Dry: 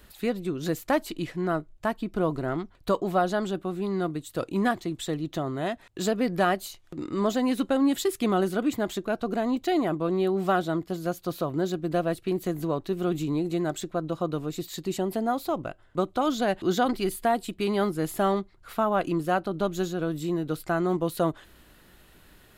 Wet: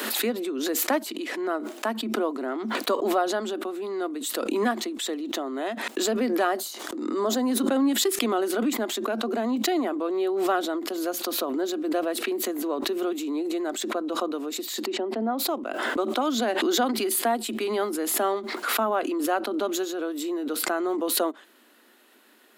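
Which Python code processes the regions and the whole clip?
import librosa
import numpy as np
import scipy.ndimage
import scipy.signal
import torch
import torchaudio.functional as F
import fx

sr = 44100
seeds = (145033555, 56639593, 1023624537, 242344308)

y = fx.chain(x, sr, fx.peak_eq(hz=2500.0, db=-8.0, octaves=0.74),
    fx.sustainer(db_per_s=75.0), at=(6.47, 7.69))
y = fx.chain(y, sr, fx.lowpass(hz=4200.0, slope=12),
    fx.high_shelf(hz=2400.0, db=-11.5), at=(14.86, 15.39))
y = scipy.signal.sosfilt(scipy.signal.cheby1(8, 1.0, 220.0, 'highpass', fs=sr, output='sos'), y)
y = fx.pre_swell(y, sr, db_per_s=31.0)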